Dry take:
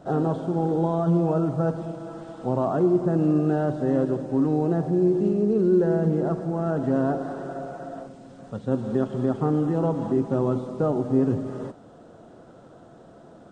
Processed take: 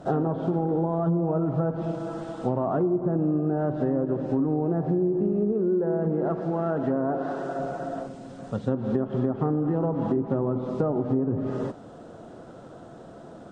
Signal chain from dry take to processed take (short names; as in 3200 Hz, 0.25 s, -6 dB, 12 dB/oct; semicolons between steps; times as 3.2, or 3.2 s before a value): treble ducked by the level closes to 1200 Hz, closed at -17.5 dBFS; 5.52–7.59 low shelf 210 Hz -9 dB; compressor, threshold -25 dBFS, peak gain reduction 9.5 dB; gain +4 dB